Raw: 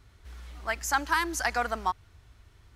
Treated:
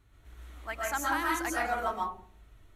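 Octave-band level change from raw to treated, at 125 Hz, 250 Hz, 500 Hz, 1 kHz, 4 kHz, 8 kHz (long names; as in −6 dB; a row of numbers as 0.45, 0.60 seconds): can't be measured, +1.0 dB, 0.0 dB, −2.0 dB, −5.5 dB, −4.0 dB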